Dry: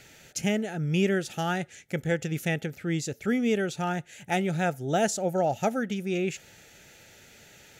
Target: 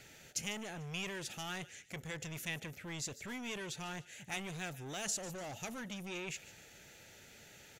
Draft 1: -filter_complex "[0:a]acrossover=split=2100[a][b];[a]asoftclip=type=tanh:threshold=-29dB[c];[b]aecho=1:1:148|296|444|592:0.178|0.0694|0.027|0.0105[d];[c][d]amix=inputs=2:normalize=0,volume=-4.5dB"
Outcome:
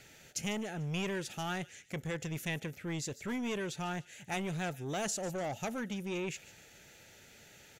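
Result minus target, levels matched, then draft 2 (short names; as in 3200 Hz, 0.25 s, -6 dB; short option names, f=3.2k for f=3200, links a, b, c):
soft clip: distortion -5 dB
-filter_complex "[0:a]acrossover=split=2100[a][b];[a]asoftclip=type=tanh:threshold=-39dB[c];[b]aecho=1:1:148|296|444|592:0.178|0.0694|0.027|0.0105[d];[c][d]amix=inputs=2:normalize=0,volume=-4.5dB"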